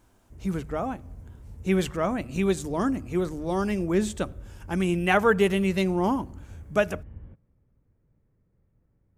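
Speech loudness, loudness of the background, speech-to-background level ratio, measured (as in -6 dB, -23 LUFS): -26.5 LUFS, -45.5 LUFS, 19.0 dB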